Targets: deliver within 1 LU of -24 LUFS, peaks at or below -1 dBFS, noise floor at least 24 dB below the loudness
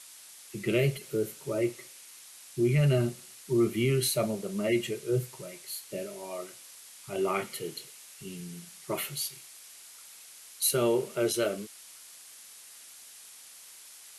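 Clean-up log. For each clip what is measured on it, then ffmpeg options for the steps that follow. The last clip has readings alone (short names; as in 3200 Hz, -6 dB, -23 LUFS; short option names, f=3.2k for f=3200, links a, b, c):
noise floor -51 dBFS; noise floor target -54 dBFS; loudness -30.0 LUFS; peak -14.5 dBFS; loudness target -24.0 LUFS
-> -af "afftdn=nr=6:nf=-51"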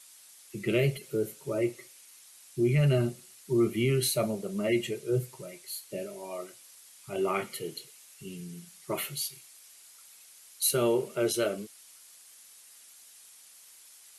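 noise floor -54 dBFS; loudness -30.0 LUFS; peak -14.5 dBFS; loudness target -24.0 LUFS
-> -af "volume=6dB"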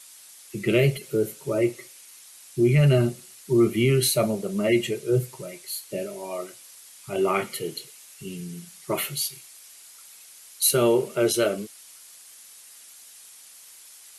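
loudness -24.0 LUFS; peak -8.5 dBFS; noise floor -48 dBFS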